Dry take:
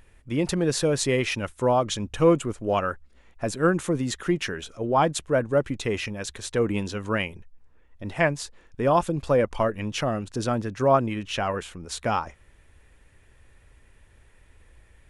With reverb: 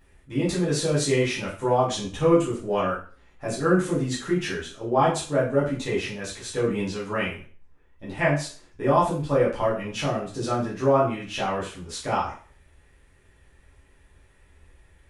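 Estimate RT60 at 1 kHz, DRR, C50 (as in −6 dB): 0.40 s, −8.5 dB, 5.5 dB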